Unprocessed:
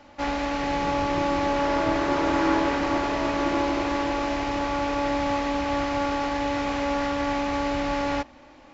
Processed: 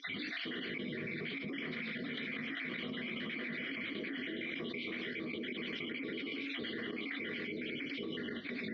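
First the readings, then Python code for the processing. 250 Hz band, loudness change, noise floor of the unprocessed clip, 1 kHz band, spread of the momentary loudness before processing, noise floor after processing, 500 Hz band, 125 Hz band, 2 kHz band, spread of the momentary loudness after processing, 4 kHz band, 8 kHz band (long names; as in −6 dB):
−14.5 dB, −14.5 dB, −50 dBFS, −30.5 dB, 3 LU, −43 dBFS, −18.5 dB, −14.5 dB, −7.5 dB, 1 LU, −7.0 dB, can't be measured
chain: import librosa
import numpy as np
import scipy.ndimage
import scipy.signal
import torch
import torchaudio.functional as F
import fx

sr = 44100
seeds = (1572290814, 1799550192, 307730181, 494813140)

p1 = fx.spec_dropout(x, sr, seeds[0], share_pct=61)
p2 = fx.rev_fdn(p1, sr, rt60_s=0.37, lf_ratio=0.7, hf_ratio=0.55, size_ms=20.0, drr_db=5.5)
p3 = fx.rider(p2, sr, range_db=4, speed_s=0.5)
p4 = p2 + (p3 * 10.0 ** (2.0 / 20.0))
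p5 = fx.cabinet(p4, sr, low_hz=200.0, low_slope=12, high_hz=3900.0, hz=(430.0, 730.0, 1400.0, 2700.0), db=(5, -5, -6, -10))
p6 = fx.spec_gate(p5, sr, threshold_db=-15, keep='weak')
p7 = p6 + fx.echo_single(p6, sr, ms=108, db=-9.0, dry=0)
p8 = fx.step_gate(p7, sr, bpm=76, pattern='xxx.xxx.xx.x.x..', floor_db=-12.0, edge_ms=4.5)
p9 = 10.0 ** (-22.5 / 20.0) * np.tanh(p8 / 10.0 ** (-22.5 / 20.0))
p10 = fx.vowel_filter(p9, sr, vowel='i')
p11 = fx.high_shelf(p10, sr, hz=3000.0, db=-11.5)
p12 = fx.env_flatten(p11, sr, amount_pct=100)
y = p12 * 10.0 ** (5.5 / 20.0)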